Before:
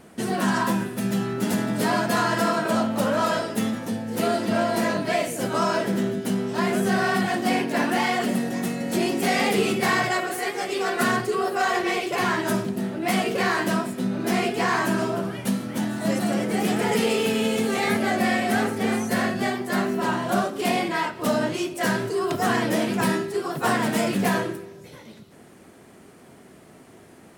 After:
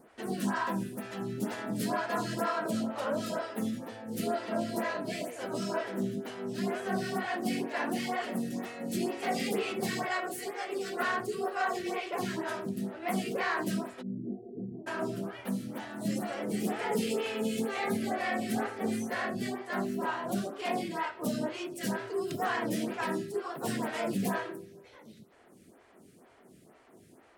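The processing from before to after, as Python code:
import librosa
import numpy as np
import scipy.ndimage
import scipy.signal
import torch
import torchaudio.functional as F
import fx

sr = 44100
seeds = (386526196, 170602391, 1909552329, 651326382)

y = fx.gaussian_blur(x, sr, sigma=23.0, at=(14.01, 14.86), fade=0.02)
y = fx.stagger_phaser(y, sr, hz=2.1)
y = F.gain(torch.from_numpy(y), -6.5).numpy()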